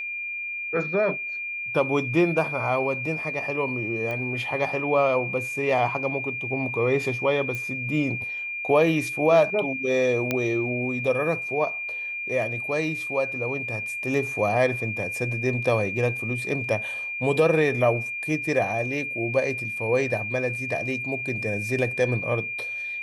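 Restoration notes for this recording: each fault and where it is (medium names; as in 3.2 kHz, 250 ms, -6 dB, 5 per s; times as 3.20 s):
whine 2.4 kHz -29 dBFS
4.11 s: pop -20 dBFS
7.55 s: pop -18 dBFS
10.31 s: pop -10 dBFS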